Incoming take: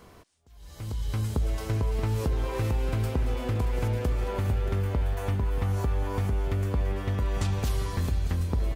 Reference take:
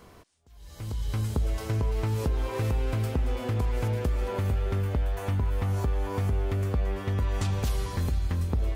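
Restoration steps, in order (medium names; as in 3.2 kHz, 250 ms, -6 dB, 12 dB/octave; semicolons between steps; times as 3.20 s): inverse comb 628 ms -11.5 dB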